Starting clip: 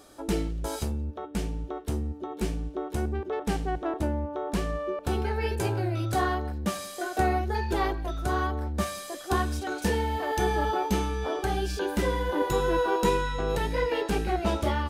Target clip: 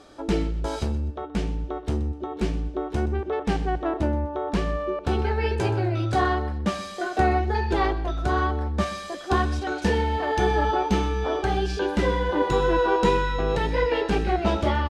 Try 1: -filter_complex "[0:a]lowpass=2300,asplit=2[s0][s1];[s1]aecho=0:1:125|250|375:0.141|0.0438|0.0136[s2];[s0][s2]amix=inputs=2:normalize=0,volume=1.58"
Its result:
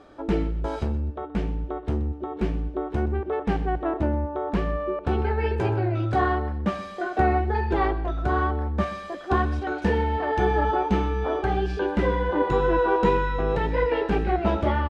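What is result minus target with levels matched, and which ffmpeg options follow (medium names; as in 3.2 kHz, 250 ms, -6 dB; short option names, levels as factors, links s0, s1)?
4 kHz band -7.0 dB
-filter_complex "[0:a]lowpass=5000,asplit=2[s0][s1];[s1]aecho=0:1:125|250|375:0.141|0.0438|0.0136[s2];[s0][s2]amix=inputs=2:normalize=0,volume=1.58"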